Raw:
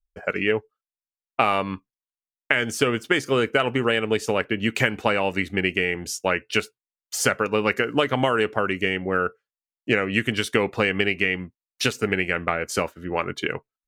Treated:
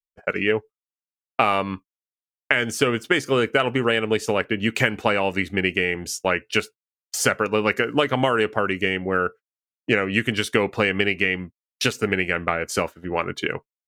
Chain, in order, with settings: gate -37 dBFS, range -28 dB; gain +1 dB

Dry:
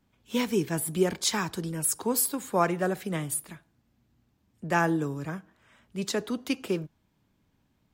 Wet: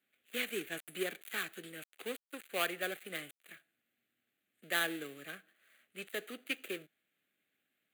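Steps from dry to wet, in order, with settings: switching dead time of 0.16 ms; Bessel high-pass 880 Hz, order 2; fixed phaser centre 2300 Hz, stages 4; gain +1 dB

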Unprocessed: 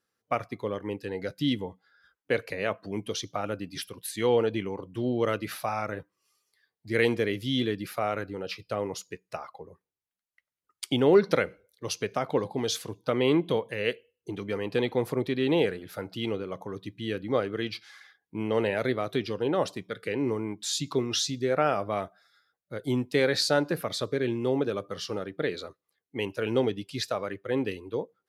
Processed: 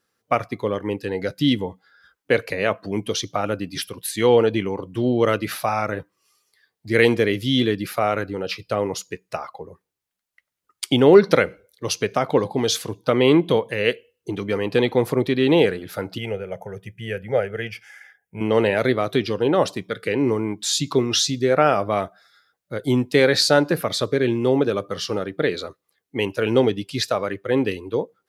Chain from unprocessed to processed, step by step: 16.18–18.41 fixed phaser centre 1100 Hz, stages 6; gain +8 dB

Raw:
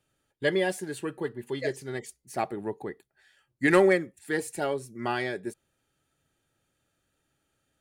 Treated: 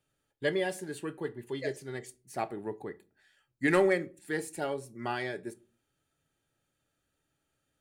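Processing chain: shoebox room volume 190 m³, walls furnished, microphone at 0.34 m; gain -4.5 dB

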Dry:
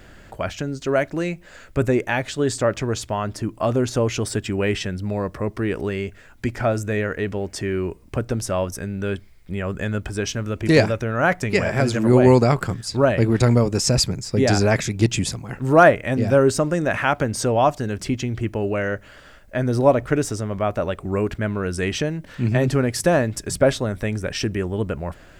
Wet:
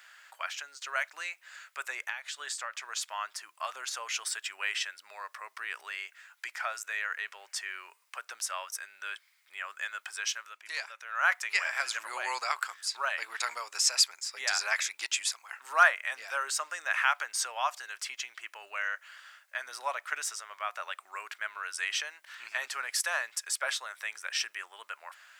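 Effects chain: HPF 1100 Hz 24 dB/oct; 2.09–2.96 compressor 12:1, threshold -30 dBFS, peak gain reduction 11.5 dB; 10.34–11.22 dip -9.5 dB, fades 0.25 s; gain -3 dB

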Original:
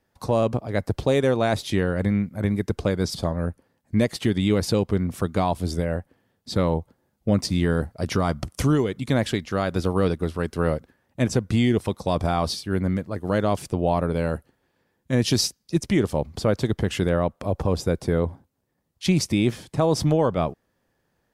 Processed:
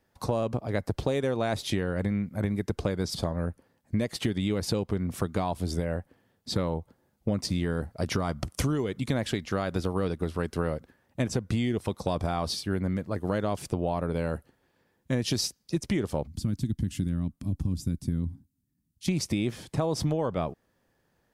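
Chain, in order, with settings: 16.27–19.08 EQ curve 280 Hz 0 dB, 470 Hz -28 dB, 9600 Hz -2 dB; compressor, threshold -24 dBFS, peak gain reduction 9 dB

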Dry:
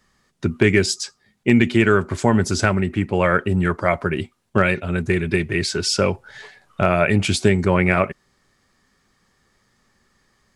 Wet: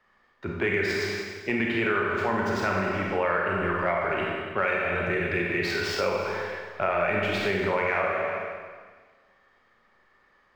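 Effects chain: median filter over 5 samples; three-band isolator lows -19 dB, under 420 Hz, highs -18 dB, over 3000 Hz; transient shaper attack -5 dB, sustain +4 dB; low shelf 160 Hz +7 dB; Schroeder reverb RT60 1.5 s, combs from 31 ms, DRR -2 dB; compressor 4:1, threshold -23 dBFS, peak gain reduction 9.5 dB

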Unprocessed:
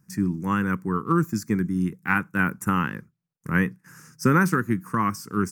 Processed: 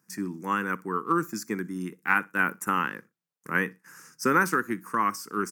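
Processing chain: HPF 350 Hz 12 dB/oct; on a send: feedback echo 60 ms, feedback 20%, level -23.5 dB

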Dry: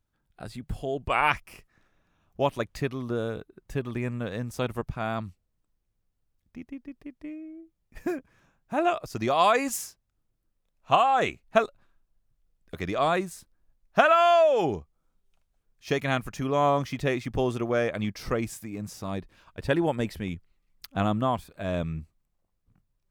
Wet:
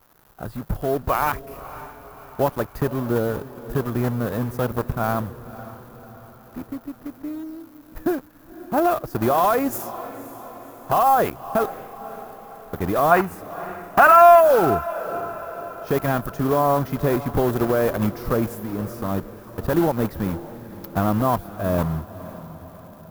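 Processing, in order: block floating point 3-bit; crackle 420/s -43 dBFS; band shelf 4300 Hz -13.5 dB 2.6 oct; limiter -17.5 dBFS, peak gain reduction 11 dB; spectral gain 13.11–14.41, 670–3000 Hz +9 dB; on a send: diffused feedback echo 0.543 s, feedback 54%, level -15 dB; on the sum: gain +7.5 dB

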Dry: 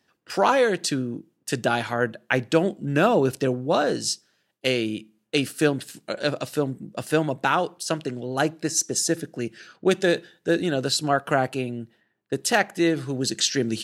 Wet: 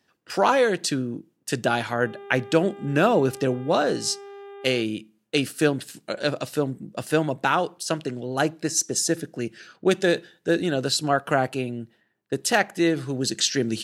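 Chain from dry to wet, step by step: 2.01–4.81 buzz 400 Hz, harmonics 9, -41 dBFS -9 dB/oct

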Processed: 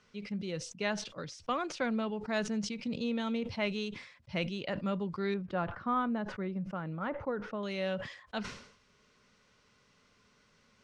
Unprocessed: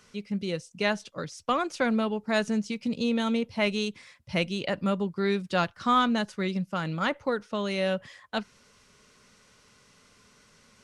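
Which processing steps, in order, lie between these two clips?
LPF 4800 Hz 12 dB/oct, from 5.34 s 1400 Hz, from 7.63 s 5200 Hz; sustainer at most 85 dB/s; gain -7 dB

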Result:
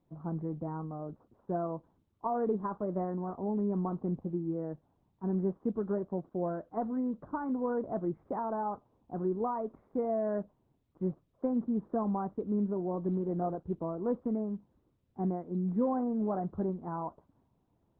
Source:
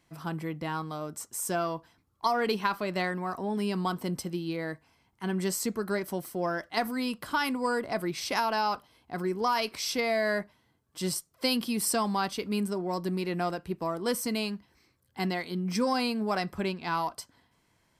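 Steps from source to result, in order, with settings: Gaussian blur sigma 9.7 samples; de-hum 54.89 Hz, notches 2; Opus 8 kbps 48000 Hz

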